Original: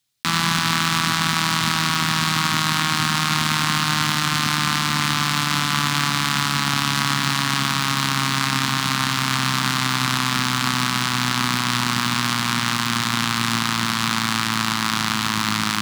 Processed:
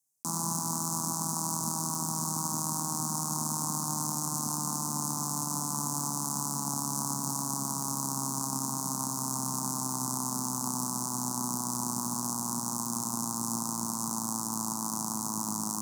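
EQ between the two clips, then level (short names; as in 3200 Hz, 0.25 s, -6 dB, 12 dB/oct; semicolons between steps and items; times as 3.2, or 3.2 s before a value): HPF 180 Hz 12 dB/oct; Chebyshev band-stop 940–6300 Hz, order 3; bell 9900 Hz +7.5 dB 1.6 oct; -7.5 dB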